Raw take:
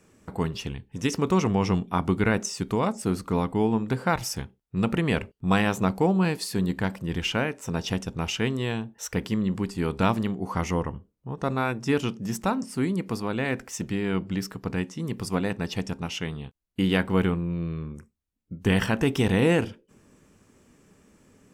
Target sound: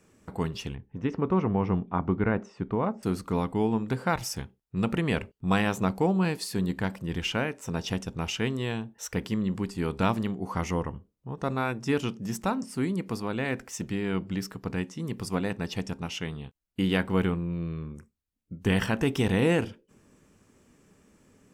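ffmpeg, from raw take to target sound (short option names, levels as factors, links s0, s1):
-filter_complex "[0:a]asettb=1/sr,asplit=3[s0][s1][s2];[s0]atrim=end=0.754[s3];[s1]atrim=start=0.75:end=3.03,asetpts=PTS-STARTPTS,afade=t=in:d=0.004:c=qsin,afade=t=out:st=2.276:d=0.004:c=qsin,lowpass=1600[s4];[s2]atrim=start=3.026[s5];[s3][s4]acrossfade=d=0.004:c1=hsin:c2=qsin[s6];[s6][s5]acrossfade=d=0.004:c1=qsin:c2=hsin,volume=0.75"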